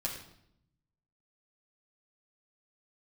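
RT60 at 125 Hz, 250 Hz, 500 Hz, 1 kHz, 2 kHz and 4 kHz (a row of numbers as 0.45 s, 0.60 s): 1.3 s, 1.1 s, 0.75 s, 0.70 s, 0.65 s, 0.60 s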